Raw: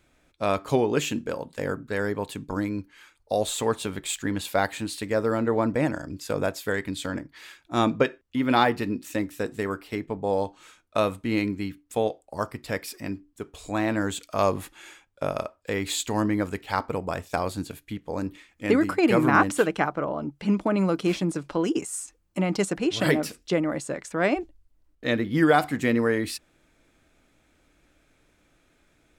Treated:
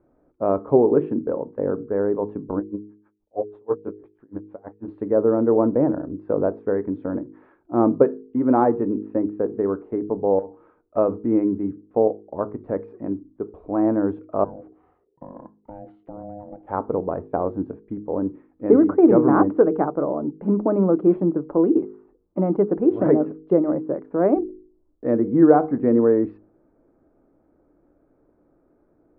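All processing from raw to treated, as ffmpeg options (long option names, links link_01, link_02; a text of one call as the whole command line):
ffmpeg -i in.wav -filter_complex "[0:a]asettb=1/sr,asplit=3[link_01][link_02][link_03];[link_01]atrim=end=2.594[link_04];[link_02]atrim=start=2.59:end=4.88,asetpts=PTS-STARTPTS,afade=type=in:duration=0.004:curve=qsin,afade=type=out:start_time=2.286:duration=0.004:curve=qsin,flanger=delay=16.5:depth=7.8:speed=1.3,aeval=exprs='val(0)*pow(10,-40*(0.5-0.5*cos(2*PI*6.2*n/s))/20)':channel_layout=same[link_05];[link_03]atrim=start=4.876[link_06];[link_04][link_05]acrossfade=duration=0.004:curve1=hsin:curve2=qsin[link_07];[link_07][link_06]acrossfade=duration=0.004:curve1=qsin:curve2=hsin,asettb=1/sr,asplit=3[link_08][link_09][link_10];[link_08]atrim=end=10.394[link_11];[link_09]atrim=start=10.39:end=10.97,asetpts=PTS-STARTPTS,afade=type=in:duration=0.004:curve=qsin,afade=type=out:start_time=0.576:duration=0.004:curve=qsin,acompressor=threshold=-35dB:ratio=6:attack=3.2:release=140:knee=1:detection=peak,aeval=exprs='0.0282*(abs(mod(val(0)/0.0282+3,4)-2)-1)':channel_layout=same[link_12];[link_10]atrim=start=10.966[link_13];[link_11][link_12]acrossfade=duration=0.004:curve1=hsin:curve2=qsin[link_14];[link_14][link_13]acrossfade=duration=0.004:curve1=qsin:curve2=hsin,asettb=1/sr,asplit=3[link_15][link_16][link_17];[link_15]atrim=end=14.444[link_18];[link_16]atrim=start=14.44:end=16.67,asetpts=PTS-STARTPTS,afade=type=in:duration=0.004:curve=qsin,afade=type=out:start_time=2.226:duration=0.004:curve=qsin,equalizer=frequency=1100:width=0.47:gain=-10,acompressor=threshold=-35dB:ratio=4:attack=3.2:release=140:knee=1:detection=peak,aeval=exprs='val(0)*sin(2*PI*410*n/s)':channel_layout=same[link_19];[link_17]atrim=start=16.666[link_20];[link_18][link_19]acrossfade=duration=0.004:curve1=hsin:curve2=qsin[link_21];[link_21][link_20]acrossfade=duration=0.004:curve1=qsin:curve2=hsin,lowpass=frequency=1200:width=0.5412,lowpass=frequency=1200:width=1.3066,equalizer=frequency=370:width_type=o:width=1.9:gain=12,bandreject=frequency=52.19:width_type=h:width=4,bandreject=frequency=104.38:width_type=h:width=4,bandreject=frequency=156.57:width_type=h:width=4,bandreject=frequency=208.76:width_type=h:width=4,bandreject=frequency=260.95:width_type=h:width=4,bandreject=frequency=313.14:width_type=h:width=4,bandreject=frequency=365.33:width_type=h:width=4,bandreject=frequency=417.52:width_type=h:width=4,bandreject=frequency=469.71:width_type=h:width=4,volume=-3dB" out.wav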